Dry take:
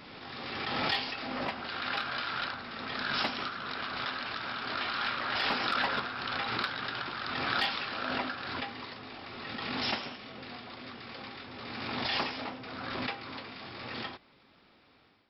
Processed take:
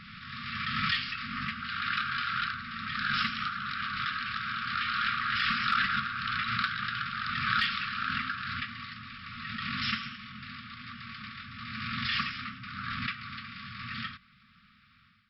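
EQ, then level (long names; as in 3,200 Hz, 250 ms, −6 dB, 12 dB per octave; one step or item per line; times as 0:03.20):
linear-phase brick-wall band-stop 240–1,100 Hz
high-shelf EQ 4,200 Hz −12 dB
+5.5 dB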